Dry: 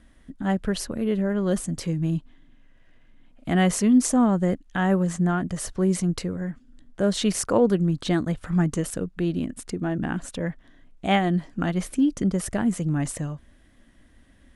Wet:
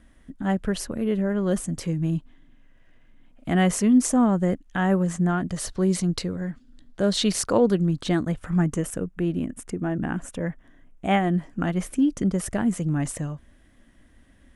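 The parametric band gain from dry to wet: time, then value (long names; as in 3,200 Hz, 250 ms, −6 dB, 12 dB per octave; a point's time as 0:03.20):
parametric band 4,200 Hz 0.64 octaves
0:05.23 −3.5 dB
0:05.64 +6 dB
0:07.55 +6 dB
0:08.21 −3.5 dB
0:09.08 −12.5 dB
0:11.20 −12.5 dB
0:12.15 −3 dB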